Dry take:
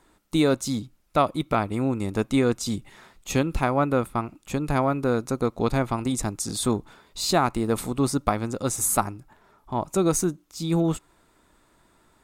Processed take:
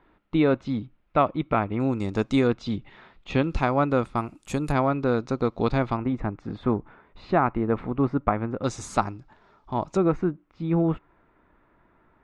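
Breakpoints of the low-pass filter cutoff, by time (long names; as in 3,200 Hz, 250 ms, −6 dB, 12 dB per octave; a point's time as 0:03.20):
low-pass filter 24 dB per octave
2,900 Hz
from 0:01.80 6,300 Hz
from 0:02.47 3,600 Hz
from 0:03.44 6,000 Hz
from 0:04.17 11,000 Hz
from 0:04.72 4,700 Hz
from 0:05.97 2,200 Hz
from 0:08.64 5,300 Hz
from 0:09.97 2,300 Hz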